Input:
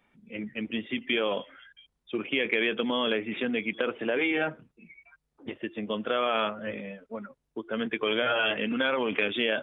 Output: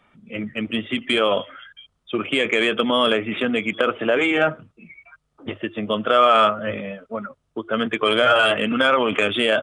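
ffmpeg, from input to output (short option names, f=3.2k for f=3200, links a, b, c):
-filter_complex "[0:a]equalizer=f=100:t=o:w=0.33:g=10,equalizer=f=160:t=o:w=0.33:g=3,equalizer=f=630:t=o:w=0.33:g=6,equalizer=f=1.25k:t=o:w=0.33:g=10,equalizer=f=3.15k:t=o:w=0.33:g=4,acrossover=split=1900[a][b];[b]asoftclip=type=tanh:threshold=-23dB[c];[a][c]amix=inputs=2:normalize=0,aresample=22050,aresample=44100,volume=6.5dB"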